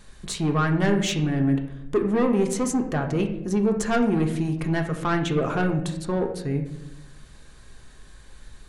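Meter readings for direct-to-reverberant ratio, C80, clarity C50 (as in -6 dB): 3.0 dB, 11.0 dB, 8.5 dB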